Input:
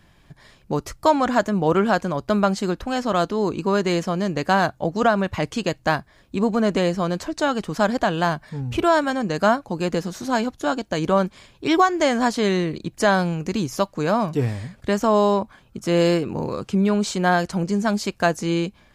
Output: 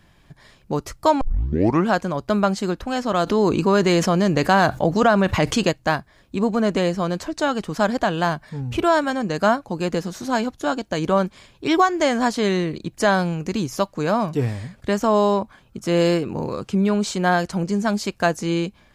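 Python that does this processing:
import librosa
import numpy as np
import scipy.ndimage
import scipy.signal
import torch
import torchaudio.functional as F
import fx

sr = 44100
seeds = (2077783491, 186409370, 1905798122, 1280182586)

y = fx.env_flatten(x, sr, amount_pct=50, at=(3.26, 5.7), fade=0.02)
y = fx.edit(y, sr, fx.tape_start(start_s=1.21, length_s=0.67), tone=tone)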